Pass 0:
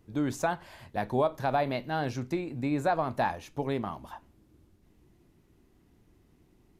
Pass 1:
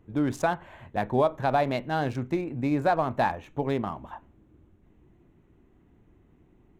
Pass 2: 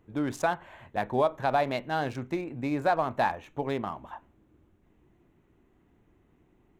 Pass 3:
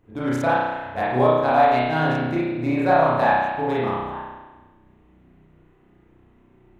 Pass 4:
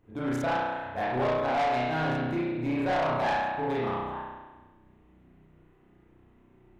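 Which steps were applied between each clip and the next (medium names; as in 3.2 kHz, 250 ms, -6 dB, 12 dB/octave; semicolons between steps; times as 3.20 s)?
local Wiener filter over 9 samples; trim +3.5 dB
bass shelf 360 Hz -6.5 dB
spring tank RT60 1.2 s, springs 32 ms, chirp 25 ms, DRR -8.5 dB
saturation -19 dBFS, distortion -9 dB; trim -4 dB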